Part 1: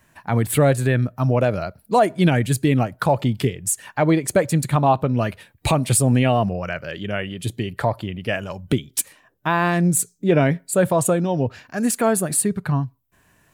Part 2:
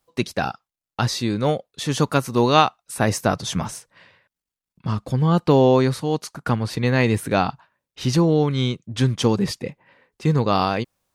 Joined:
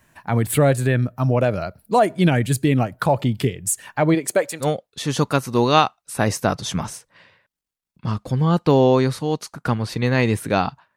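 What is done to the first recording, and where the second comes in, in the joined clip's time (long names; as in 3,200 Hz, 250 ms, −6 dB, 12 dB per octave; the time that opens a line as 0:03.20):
part 1
0:04.14–0:04.67: high-pass filter 180 Hz → 860 Hz
0:04.63: continue with part 2 from 0:01.44, crossfade 0.08 s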